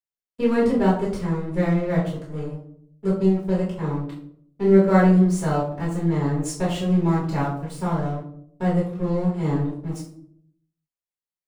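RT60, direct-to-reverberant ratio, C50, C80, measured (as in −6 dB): 0.65 s, −8.0 dB, 4.5 dB, 8.5 dB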